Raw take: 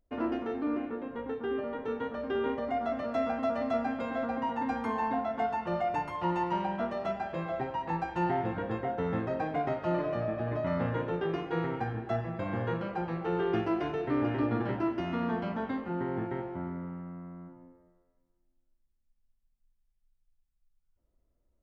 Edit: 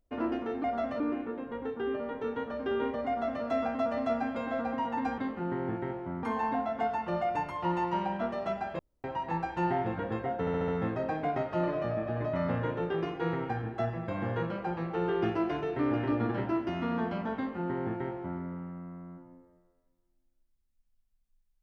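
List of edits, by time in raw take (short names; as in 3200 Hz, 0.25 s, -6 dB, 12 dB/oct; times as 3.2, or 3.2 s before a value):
2.72–3.08 copy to 0.64
7.38–7.63 room tone
8.99 stutter 0.07 s, 5 plays
15.67–16.72 copy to 4.82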